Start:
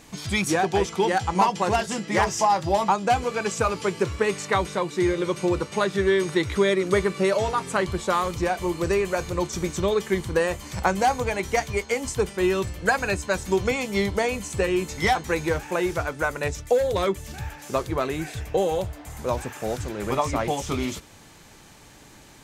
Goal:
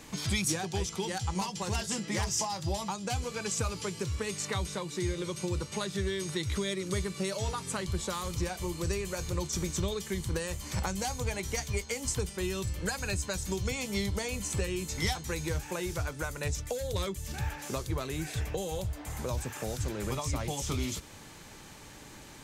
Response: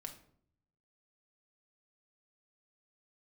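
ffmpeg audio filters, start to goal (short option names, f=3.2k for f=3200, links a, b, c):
-filter_complex "[0:a]bandreject=f=700:w=16,acrossover=split=150|3600[a][b][c];[b]acompressor=threshold=-35dB:ratio=6[d];[a][d][c]amix=inputs=3:normalize=0"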